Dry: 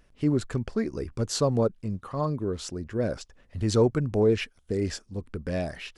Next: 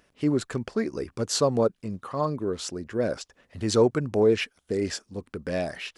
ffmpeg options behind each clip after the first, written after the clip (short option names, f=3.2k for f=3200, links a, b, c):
-af "highpass=f=270:p=1,volume=3.5dB"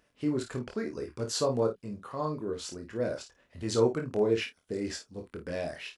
-filter_complex "[0:a]asplit=2[a][b];[b]adelay=26,volume=-13dB[c];[a][c]amix=inputs=2:normalize=0,aecho=1:1:24|53:0.501|0.335,volume=-7dB"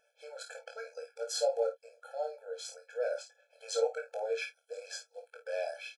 -filter_complex "[0:a]asplit=2[a][b];[b]adelay=17,volume=-10dB[c];[a][c]amix=inputs=2:normalize=0,afftfilt=real='re*eq(mod(floor(b*sr/1024/440),2),1)':imag='im*eq(mod(floor(b*sr/1024/440),2),1)':win_size=1024:overlap=0.75"